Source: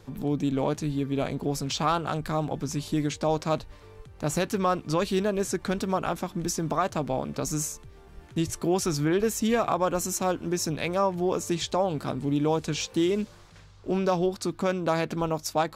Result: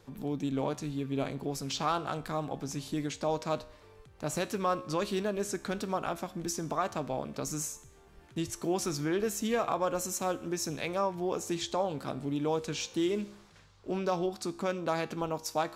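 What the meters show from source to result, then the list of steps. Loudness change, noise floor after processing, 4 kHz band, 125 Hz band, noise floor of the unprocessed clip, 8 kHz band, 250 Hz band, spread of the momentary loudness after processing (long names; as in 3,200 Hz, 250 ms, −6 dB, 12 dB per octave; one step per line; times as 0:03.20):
−5.5 dB, −58 dBFS, −4.5 dB, −8.0 dB, −50 dBFS, −4.5 dB, −6.5 dB, 6 LU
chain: low-shelf EQ 170 Hz −6 dB
tuned comb filter 68 Hz, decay 0.66 s, harmonics all, mix 50%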